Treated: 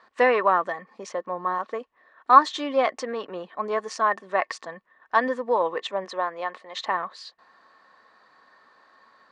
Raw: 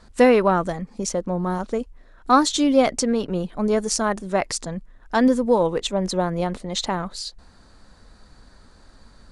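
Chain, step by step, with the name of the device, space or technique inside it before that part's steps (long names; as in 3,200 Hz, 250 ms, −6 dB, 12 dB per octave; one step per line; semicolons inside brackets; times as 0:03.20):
tin-can telephone (band-pass filter 560–2,900 Hz; hollow resonant body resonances 1,100/1,800 Hz, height 13 dB, ringing for 45 ms)
0:06.04–0:06.84: high-pass filter 350 Hz → 810 Hz 6 dB per octave
level −1 dB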